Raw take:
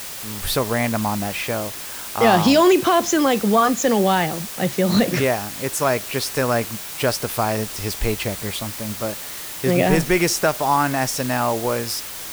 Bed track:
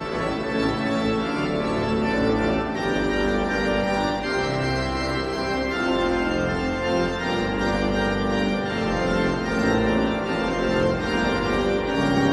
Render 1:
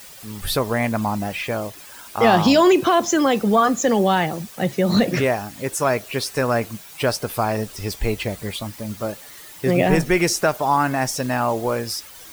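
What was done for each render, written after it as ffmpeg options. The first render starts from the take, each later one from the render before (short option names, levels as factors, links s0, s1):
-af "afftdn=nr=11:nf=-33"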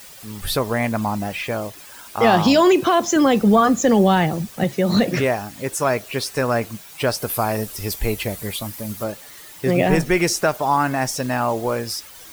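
-filter_complex "[0:a]asettb=1/sr,asplit=3[s0][s1][s2];[s0]atrim=end=3.164[s3];[s1]atrim=start=3.16:end=4.64,asetpts=PTS-STARTPTS,afade=t=in:d=0.004:c=qsin,afade=t=out:st=1.476:d=0.004:c=qsin,lowshelf=f=230:g=9[s4];[s2]atrim=start=4.636[s5];[s3][s4]acrossfade=d=0.004:c1=hsin:c2=qsin[s6];[s6][s5]acrossfade=d=0.004:c1=qsin:c2=hsin,asettb=1/sr,asplit=3[s7][s8][s9];[s7]atrim=end=7.174[s10];[s8]atrim=start=7.17:end=9.04,asetpts=PTS-STARTPTS,afade=t=in:d=0.004:c=qsin,afade=t=out:st=1.866:d=0.004:c=qsin,equalizer=f=13000:w=0.77:g=9.5[s11];[s9]atrim=start=9.036[s12];[s10][s11]acrossfade=d=0.004:c1=hsin:c2=qsin[s13];[s13][s12]acrossfade=d=0.004:c1=qsin:c2=hsin"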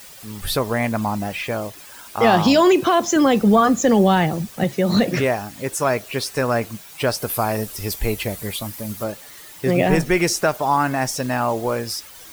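-af anull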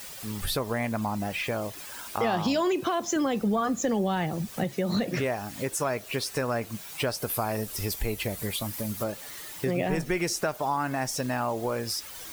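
-af "acompressor=threshold=0.0355:ratio=2.5"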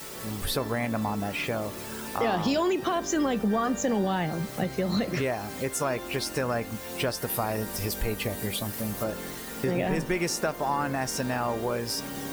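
-filter_complex "[1:a]volume=0.141[s0];[0:a][s0]amix=inputs=2:normalize=0"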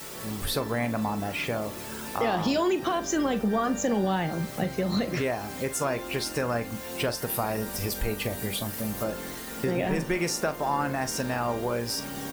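-filter_complex "[0:a]asplit=2[s0][s1];[s1]adelay=42,volume=0.224[s2];[s0][s2]amix=inputs=2:normalize=0"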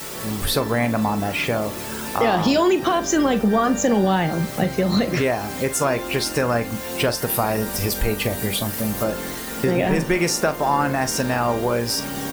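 -af "volume=2.37"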